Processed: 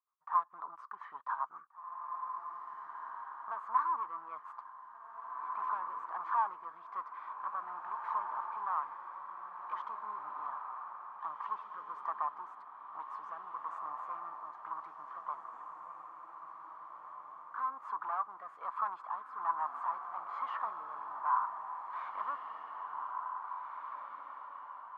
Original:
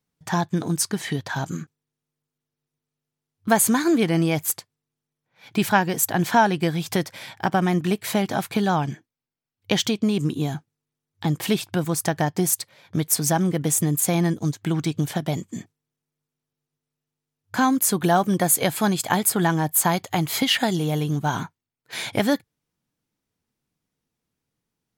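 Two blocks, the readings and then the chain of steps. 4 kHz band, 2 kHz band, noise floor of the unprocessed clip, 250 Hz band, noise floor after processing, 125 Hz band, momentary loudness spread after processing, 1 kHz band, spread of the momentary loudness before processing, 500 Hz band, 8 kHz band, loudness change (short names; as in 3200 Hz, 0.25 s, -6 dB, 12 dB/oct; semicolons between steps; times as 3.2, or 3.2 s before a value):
under -35 dB, -20.5 dB, under -85 dBFS, under -40 dB, -53 dBFS, under -40 dB, 14 LU, -7.5 dB, 10 LU, -29.5 dB, under -40 dB, -17.5 dB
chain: tube stage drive 25 dB, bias 0.4; rotary speaker horn 7.5 Hz, later 1.2 Hz, at 2.86; Butterworth band-pass 1100 Hz, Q 4.6; diffused feedback echo 1.937 s, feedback 42%, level -4.5 dB; gain +11.5 dB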